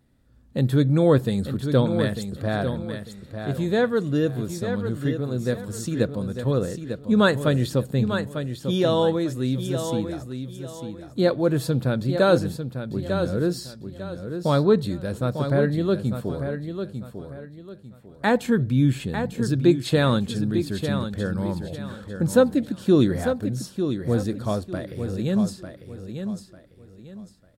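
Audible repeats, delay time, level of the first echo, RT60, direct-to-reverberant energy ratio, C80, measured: 3, 898 ms, -8.0 dB, no reverb, no reverb, no reverb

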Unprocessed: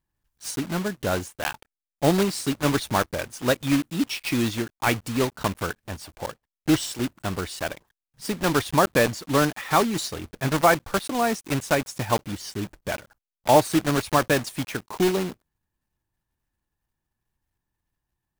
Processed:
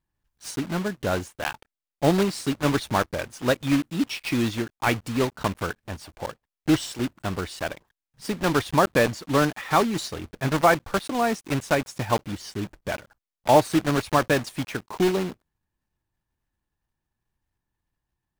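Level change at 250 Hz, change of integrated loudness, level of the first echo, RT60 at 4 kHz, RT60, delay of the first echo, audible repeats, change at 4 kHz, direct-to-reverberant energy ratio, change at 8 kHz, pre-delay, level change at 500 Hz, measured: 0.0 dB, -0.5 dB, no echo, no reverb, no reverb, no echo, no echo, -1.5 dB, no reverb, -4.0 dB, no reverb, 0.0 dB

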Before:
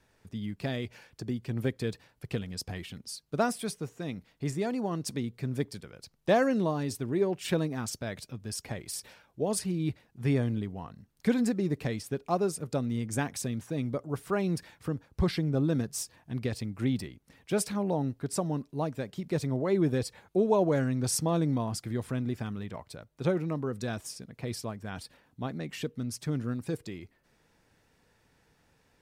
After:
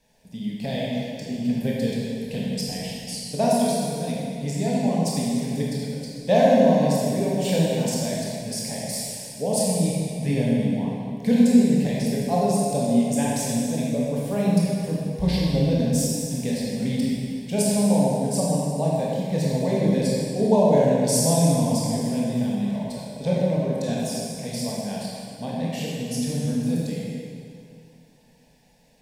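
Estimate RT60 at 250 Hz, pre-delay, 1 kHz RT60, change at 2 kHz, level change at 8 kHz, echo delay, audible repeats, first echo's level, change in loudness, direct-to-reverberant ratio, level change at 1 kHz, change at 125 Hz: 2.5 s, 18 ms, 2.3 s, +2.5 dB, +9.5 dB, no echo, no echo, no echo, +8.5 dB, -5.5 dB, +8.0 dB, +7.5 dB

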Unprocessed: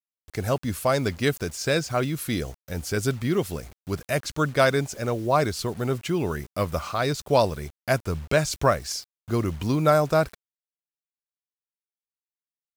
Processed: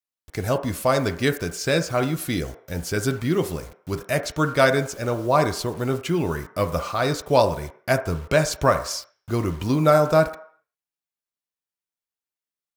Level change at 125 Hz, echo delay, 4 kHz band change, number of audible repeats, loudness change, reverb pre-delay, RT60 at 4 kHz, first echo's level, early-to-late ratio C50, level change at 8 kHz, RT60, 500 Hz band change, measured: +1.5 dB, no echo, +1.5 dB, no echo, +2.5 dB, 3 ms, 0.60 s, no echo, 15.5 dB, +1.5 dB, 0.60 s, +2.5 dB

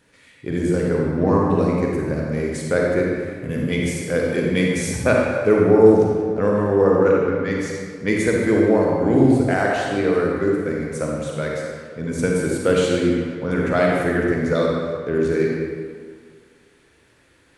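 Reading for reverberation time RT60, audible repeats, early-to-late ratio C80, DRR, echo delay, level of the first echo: 1.9 s, no echo, 1.0 dB, -2.5 dB, no echo, no echo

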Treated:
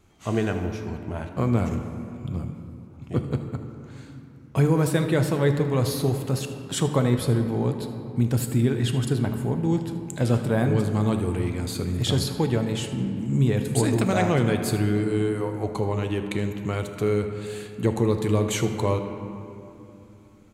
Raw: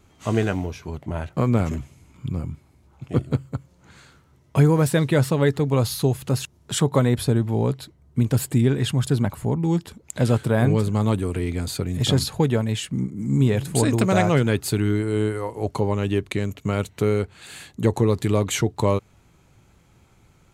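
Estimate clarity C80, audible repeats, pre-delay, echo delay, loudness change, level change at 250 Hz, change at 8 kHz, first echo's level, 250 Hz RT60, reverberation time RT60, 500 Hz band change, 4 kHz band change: 8.0 dB, 1, 3 ms, 78 ms, -2.5 dB, -1.5 dB, -3.0 dB, -16.0 dB, 4.1 s, 2.9 s, -2.0 dB, -3.0 dB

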